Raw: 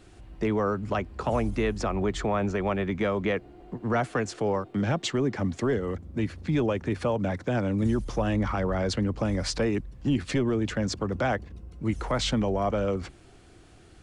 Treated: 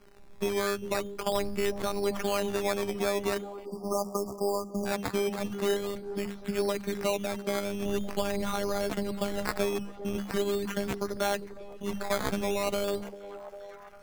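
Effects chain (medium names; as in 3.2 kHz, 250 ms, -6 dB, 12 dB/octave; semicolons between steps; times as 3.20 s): robot voice 201 Hz; hum notches 50/100/150/200 Hz; decimation with a swept rate 12×, swing 60% 0.43 Hz; repeats whose band climbs or falls 399 ms, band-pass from 370 Hz, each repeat 0.7 oct, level -9.5 dB; spectral selection erased 3.65–4.86 s, 1.3–4.6 kHz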